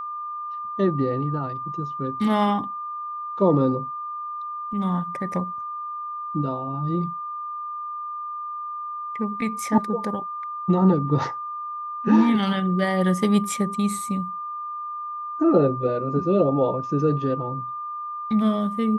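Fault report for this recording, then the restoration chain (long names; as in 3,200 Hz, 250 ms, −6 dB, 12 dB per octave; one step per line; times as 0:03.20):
whistle 1,200 Hz −29 dBFS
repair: notch filter 1,200 Hz, Q 30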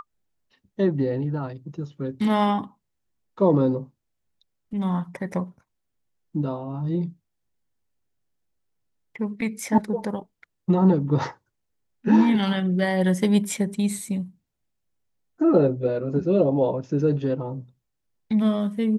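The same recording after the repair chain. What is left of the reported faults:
none of them is left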